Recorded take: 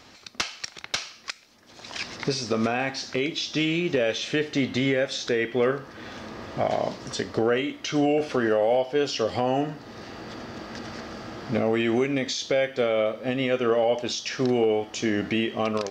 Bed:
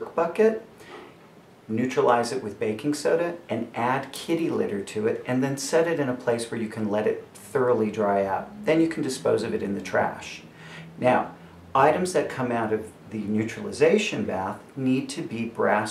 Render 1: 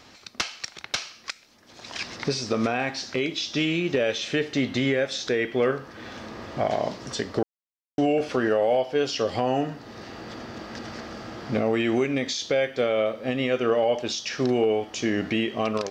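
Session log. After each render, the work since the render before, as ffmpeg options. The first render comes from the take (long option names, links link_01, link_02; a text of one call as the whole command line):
ffmpeg -i in.wav -filter_complex "[0:a]asplit=3[link_01][link_02][link_03];[link_01]atrim=end=7.43,asetpts=PTS-STARTPTS,afade=type=out:start_time=7.426:duration=0.004:curve=hsin[link_04];[link_02]atrim=start=7.43:end=7.98,asetpts=PTS-STARTPTS,volume=0[link_05];[link_03]atrim=start=7.98,asetpts=PTS-STARTPTS,afade=type=in:duration=0.004:curve=hsin[link_06];[link_04][link_05][link_06]concat=n=3:v=0:a=1" out.wav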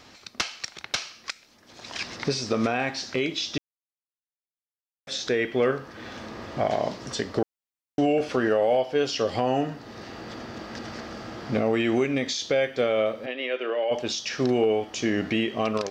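ffmpeg -i in.wav -filter_complex "[0:a]asplit=3[link_01][link_02][link_03];[link_01]afade=type=out:start_time=13.25:duration=0.02[link_04];[link_02]highpass=frequency=370:width=0.5412,highpass=frequency=370:width=1.3066,equalizer=frequency=450:width_type=q:width=4:gain=-6,equalizer=frequency=740:width_type=q:width=4:gain=-7,equalizer=frequency=1200:width_type=q:width=4:gain=-8,lowpass=frequency=3800:width=0.5412,lowpass=frequency=3800:width=1.3066,afade=type=in:start_time=13.25:duration=0.02,afade=type=out:start_time=13.9:duration=0.02[link_05];[link_03]afade=type=in:start_time=13.9:duration=0.02[link_06];[link_04][link_05][link_06]amix=inputs=3:normalize=0,asplit=3[link_07][link_08][link_09];[link_07]atrim=end=3.58,asetpts=PTS-STARTPTS,afade=type=out:start_time=3.576:duration=0.004:curve=hsin[link_10];[link_08]atrim=start=3.58:end=5.07,asetpts=PTS-STARTPTS,volume=0[link_11];[link_09]atrim=start=5.07,asetpts=PTS-STARTPTS,afade=type=in:duration=0.004:curve=hsin[link_12];[link_10][link_11][link_12]concat=n=3:v=0:a=1" out.wav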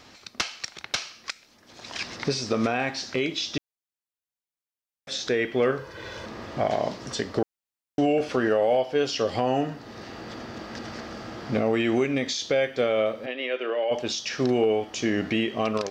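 ffmpeg -i in.wav -filter_complex "[0:a]asettb=1/sr,asplit=3[link_01][link_02][link_03];[link_01]atrim=end=5.784[link_04];[link_02]atrim=start=5.78:end=6.26,asetpts=PTS-STARTPTS,afade=type=in:duration=0.004:curve=qsin,afade=type=out:start_time=0.476:duration=0.004:curve=qsin,aecho=1:1:2:0.75,atrim=end_sample=21168[link_05];[link_03]atrim=start=6.256[link_06];[link_04][link_05]acrossfade=duration=0.004:curve1=hsin:curve2=qsin[link_07];[link_07][link_06]acrossfade=duration=0.004:curve1=qsin:curve2=hsin" out.wav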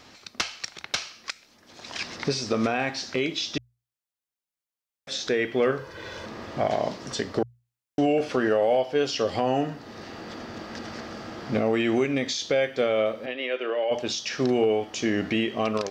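ffmpeg -i in.wav -af "bandreject=frequency=60:width_type=h:width=6,bandreject=frequency=120:width_type=h:width=6" out.wav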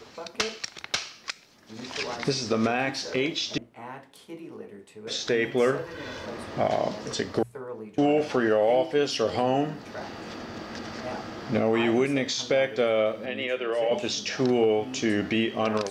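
ffmpeg -i in.wav -i bed.wav -filter_complex "[1:a]volume=-16dB[link_01];[0:a][link_01]amix=inputs=2:normalize=0" out.wav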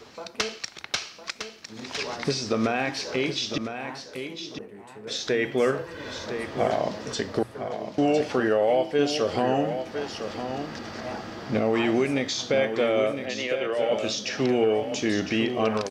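ffmpeg -i in.wav -af "aecho=1:1:1007:0.376" out.wav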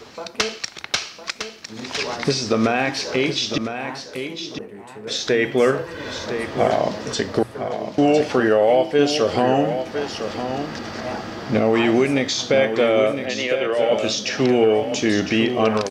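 ffmpeg -i in.wav -af "volume=6dB" out.wav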